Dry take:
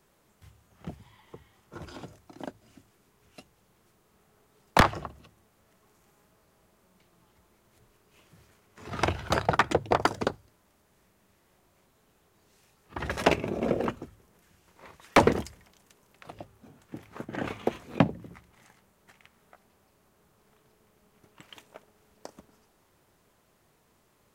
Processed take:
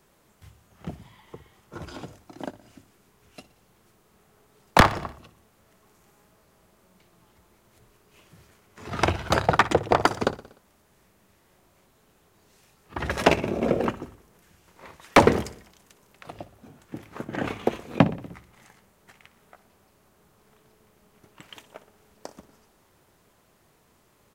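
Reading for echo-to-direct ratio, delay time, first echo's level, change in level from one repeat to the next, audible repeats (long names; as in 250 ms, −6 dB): −16.0 dB, 60 ms, −17.5 dB, −4.5 dB, 4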